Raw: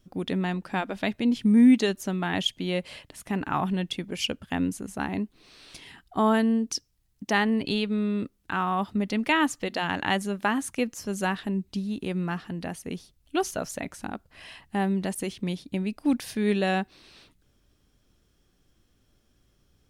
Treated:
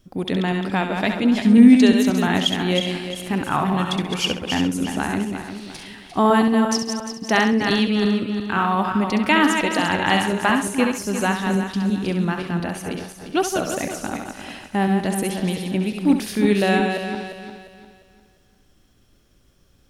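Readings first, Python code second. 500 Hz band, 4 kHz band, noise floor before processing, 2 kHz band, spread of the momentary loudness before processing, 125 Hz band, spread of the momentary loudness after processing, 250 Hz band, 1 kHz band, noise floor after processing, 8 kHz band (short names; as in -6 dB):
+7.5 dB, +8.0 dB, -68 dBFS, +7.5 dB, 12 LU, +7.0 dB, 12 LU, +7.5 dB, +7.5 dB, -58 dBFS, +7.5 dB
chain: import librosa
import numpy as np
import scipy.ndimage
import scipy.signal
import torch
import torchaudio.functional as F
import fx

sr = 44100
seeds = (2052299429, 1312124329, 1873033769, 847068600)

y = fx.reverse_delay_fb(x, sr, ms=175, feedback_pct=58, wet_db=-5.5)
y = fx.echo_thinned(y, sr, ms=67, feedback_pct=23, hz=420.0, wet_db=-7.5)
y = y * librosa.db_to_amplitude(5.5)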